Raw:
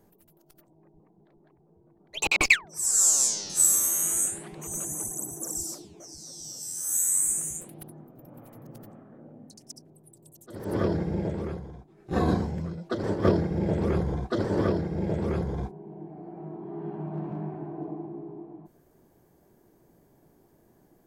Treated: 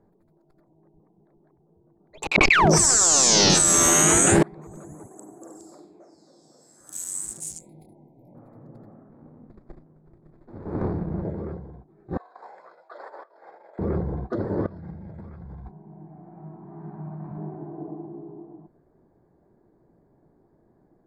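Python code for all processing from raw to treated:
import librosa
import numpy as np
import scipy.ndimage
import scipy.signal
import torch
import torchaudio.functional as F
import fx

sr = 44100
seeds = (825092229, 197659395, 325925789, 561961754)

y = fx.chain(x, sr, fx.lowpass(hz=4300.0, slope=12),
    fx.env_flatten(amount_pct=100), at=(2.35, 4.43))
y = fx.chain(y, sr, fx.highpass(hz=290.0, slope=12),
    fx.room_flutter(wall_m=8.3, rt60_s=0.45), at=(5.06, 6.81))
y = fx.chain(y, sr, fx.brickwall_bandstop(low_hz=1000.0, high_hz=2000.0),
    fx.high_shelf(hz=2400.0, db=12.0),
    fx.detune_double(cents=33), at=(7.4, 8.35))
y = fx.chain(y, sr, fx.doubler(ms=33.0, db=-11),
    fx.running_max(window=33), at=(9.09, 11.23))
y = fx.chain(y, sr, fx.over_compress(threshold_db=-30.0, ratio=-0.5),
    fx.highpass(hz=710.0, slope=24), at=(12.17, 13.79))
y = fx.chain(y, sr, fx.peak_eq(hz=410.0, db=-14.0, octaves=1.4),
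    fx.over_compress(threshold_db=-38.0, ratio=-1.0), at=(14.66, 17.38))
y = fx.wiener(y, sr, points=15)
y = fx.high_shelf(y, sr, hz=12000.0, db=-11.5)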